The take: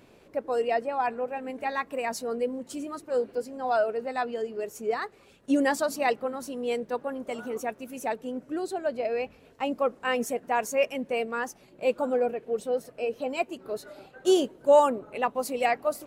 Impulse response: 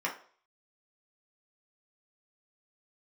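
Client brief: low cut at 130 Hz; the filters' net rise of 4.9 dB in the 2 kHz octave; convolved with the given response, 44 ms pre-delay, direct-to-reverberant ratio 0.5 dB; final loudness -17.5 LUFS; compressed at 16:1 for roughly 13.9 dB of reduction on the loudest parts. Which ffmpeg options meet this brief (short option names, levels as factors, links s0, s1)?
-filter_complex "[0:a]highpass=130,equalizer=f=2000:t=o:g=6,acompressor=threshold=0.0447:ratio=16,asplit=2[s0][s1];[1:a]atrim=start_sample=2205,adelay=44[s2];[s1][s2]afir=irnorm=-1:irlink=0,volume=0.422[s3];[s0][s3]amix=inputs=2:normalize=0,volume=4.73"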